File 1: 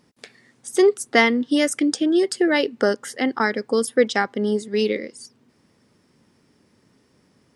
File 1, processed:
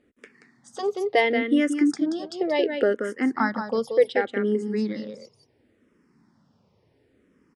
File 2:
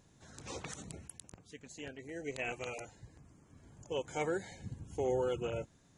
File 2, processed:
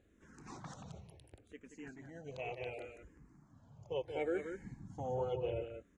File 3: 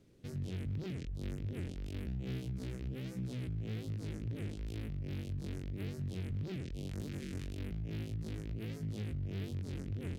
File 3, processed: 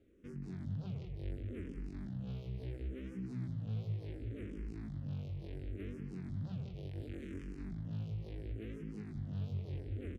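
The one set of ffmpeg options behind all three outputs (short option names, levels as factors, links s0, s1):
-filter_complex "[0:a]lowpass=f=1800:p=1,asplit=2[s0][s1];[s1]aecho=0:1:180:0.422[s2];[s0][s2]amix=inputs=2:normalize=0,asplit=2[s3][s4];[s4]afreqshift=-0.7[s5];[s3][s5]amix=inputs=2:normalize=1"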